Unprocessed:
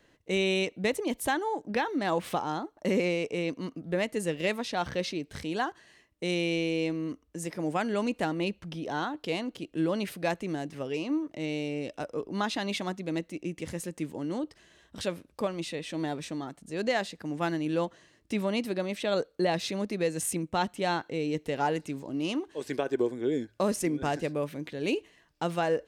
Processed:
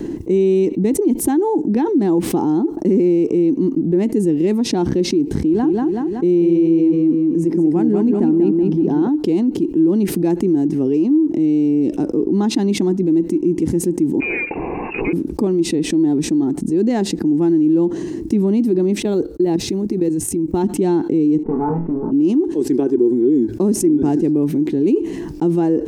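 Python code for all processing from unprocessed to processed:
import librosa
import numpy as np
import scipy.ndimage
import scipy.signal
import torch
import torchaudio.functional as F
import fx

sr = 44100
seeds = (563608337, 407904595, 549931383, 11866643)

y = fx.chain(x, sr, fx.high_shelf(hz=3400.0, db=-8.5),
    fx.echo_feedback(ms=188, feedback_pct=35, wet_db=-5.0), at=(5.35, 9.09))
y = fx.chain(y, sr, fx.law_mismatch(coded='mu'),
    fx.freq_invert(carrier_hz=2700),
    fx.peak_eq(hz=500.0, db=14.0, octaves=0.82), at=(14.2, 15.13))
y = fx.chain(y, sr, fx.block_float(bits=7),
    fx.low_shelf_res(hz=130.0, db=8.0, q=1.5),
    fx.level_steps(step_db=15), at=(19.0, 20.64))
y = fx.chain(y, sr, fx.lower_of_two(delay_ms=4.6),
    fx.ladder_lowpass(hz=1400.0, resonance_pct=50),
    fx.room_flutter(wall_m=4.1, rt60_s=0.23), at=(21.43, 22.12))
y = fx.curve_eq(y, sr, hz=(110.0, 350.0, 580.0, 850.0, 1200.0, 2500.0, 3500.0, 5800.0), db=(0, 15, -13, -4, -15, -16, -17, -10))
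y = fx.env_flatten(y, sr, amount_pct=70)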